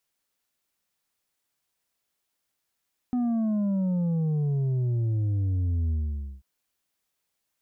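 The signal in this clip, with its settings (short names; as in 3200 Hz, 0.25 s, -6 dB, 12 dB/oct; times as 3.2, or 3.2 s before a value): sub drop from 250 Hz, over 3.29 s, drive 5 dB, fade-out 0.51 s, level -23.5 dB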